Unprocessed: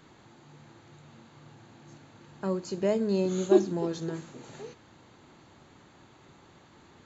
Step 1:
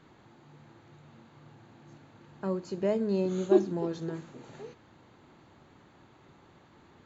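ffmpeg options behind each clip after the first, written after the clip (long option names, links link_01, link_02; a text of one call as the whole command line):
ffmpeg -i in.wav -af "lowpass=frequency=3000:poles=1,volume=-1.5dB" out.wav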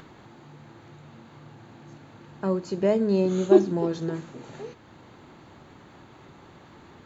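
ffmpeg -i in.wav -af "acompressor=mode=upward:threshold=-50dB:ratio=2.5,volume=6dB" out.wav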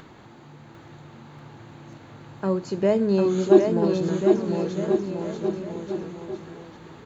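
ffmpeg -i in.wav -af "aecho=1:1:750|1388|1929|2390|2781:0.631|0.398|0.251|0.158|0.1,volume=1.5dB" out.wav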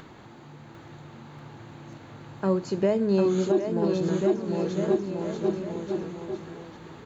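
ffmpeg -i in.wav -af "alimiter=limit=-13.5dB:level=0:latency=1:release=417" out.wav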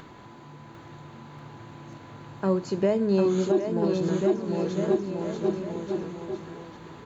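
ffmpeg -i in.wav -af "aeval=exprs='val(0)+0.00224*sin(2*PI*1000*n/s)':channel_layout=same" out.wav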